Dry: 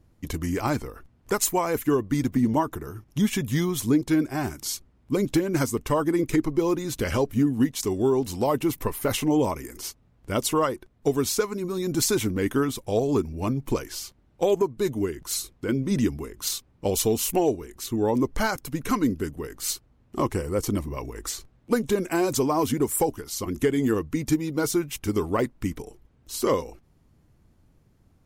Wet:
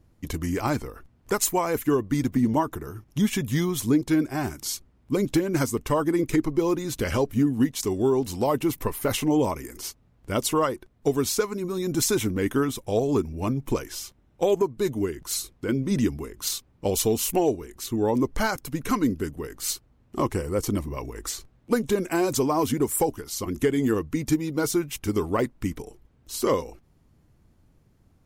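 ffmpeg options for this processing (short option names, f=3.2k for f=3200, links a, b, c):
-filter_complex "[0:a]asettb=1/sr,asplit=3[a][b][c];[a]atrim=end=11.534[d];[b]atrim=start=11.53:end=14.56,asetpts=PTS-STARTPTS,afade=t=in:d=0.004:c=qsin,afade=t=out:st=3.026:d=0.004:c=qsin,bandreject=f=4.5k:w=12[e];[c]atrim=start=14.556[f];[d][e]acrossfade=d=0.004:c1=hsin:c2=qsin[g];[g][f]acrossfade=d=0.004:c1=qsin:c2=hsin"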